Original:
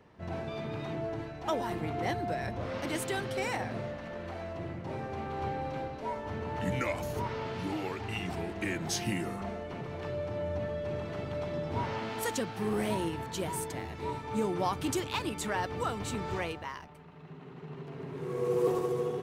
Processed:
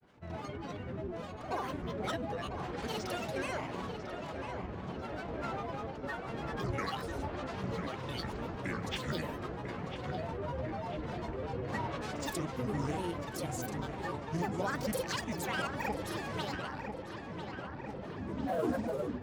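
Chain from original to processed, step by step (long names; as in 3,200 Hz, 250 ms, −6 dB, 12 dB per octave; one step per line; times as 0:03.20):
granular cloud, grains 20 per second, spray 34 ms, pitch spread up and down by 12 semitones
feedback echo with a low-pass in the loop 997 ms, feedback 76%, low-pass 3,200 Hz, level −7.5 dB
level −3 dB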